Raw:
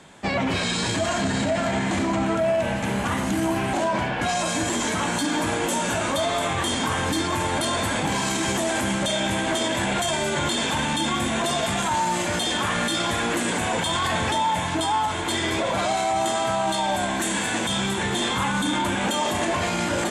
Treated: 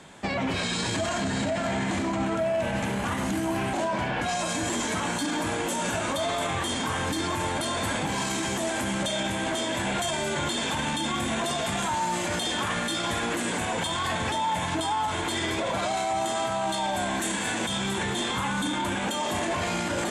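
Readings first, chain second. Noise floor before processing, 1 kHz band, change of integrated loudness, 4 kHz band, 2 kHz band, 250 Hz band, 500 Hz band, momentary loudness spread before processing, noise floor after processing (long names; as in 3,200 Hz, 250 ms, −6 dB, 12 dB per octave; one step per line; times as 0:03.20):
−26 dBFS, −4.0 dB, −4.0 dB, −4.0 dB, −4.0 dB, −4.0 dB, −4.0 dB, 1 LU, −29 dBFS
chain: brickwall limiter −19.5 dBFS, peak gain reduction 6.5 dB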